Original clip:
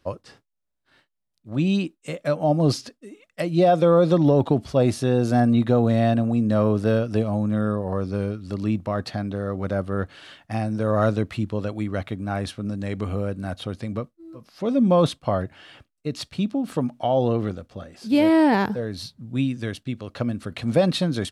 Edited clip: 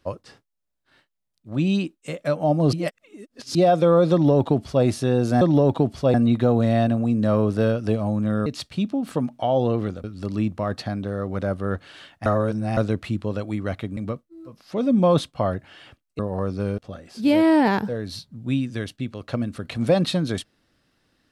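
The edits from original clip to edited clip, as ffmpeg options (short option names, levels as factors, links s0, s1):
-filter_complex "[0:a]asplit=12[s0][s1][s2][s3][s4][s5][s6][s7][s8][s9][s10][s11];[s0]atrim=end=2.732[s12];[s1]atrim=start=2.728:end=3.552,asetpts=PTS-STARTPTS,areverse[s13];[s2]atrim=start=3.548:end=5.412[s14];[s3]atrim=start=4.118:end=4.852[s15];[s4]atrim=start=5.408:end=7.732[s16];[s5]atrim=start=16.068:end=17.652[s17];[s6]atrim=start=8.318:end=10.542[s18];[s7]atrim=start=10.538:end=11.052,asetpts=PTS-STARTPTS,areverse[s19];[s8]atrim=start=11.048:end=12.252[s20];[s9]atrim=start=13.848:end=16.072[s21];[s10]atrim=start=7.728:end=8.322[s22];[s11]atrim=start=17.648[s23];[s12][s13]acrossfade=d=0.004:c1=hsin:c2=hsin[s24];[s24][s14]acrossfade=d=0.004:c1=hsin:c2=hsin[s25];[s25][s15]acrossfade=d=0.004:c1=hsin:c2=hsin[s26];[s26][s16]acrossfade=d=0.004:c1=hsin:c2=hsin[s27];[s27][s17]acrossfade=d=0.004:c1=hsin:c2=hsin[s28];[s28][s18]acrossfade=d=0.004:c1=hsin:c2=hsin[s29];[s29][s19]acrossfade=d=0.004:c1=hsin:c2=hsin[s30];[s30][s20]acrossfade=d=0.004:c1=hsin:c2=hsin[s31];[s31][s21]acrossfade=d=0.004:c1=hsin:c2=hsin[s32];[s32][s22]acrossfade=d=0.004:c1=hsin:c2=hsin[s33];[s33][s23]acrossfade=d=0.004:c1=hsin:c2=hsin"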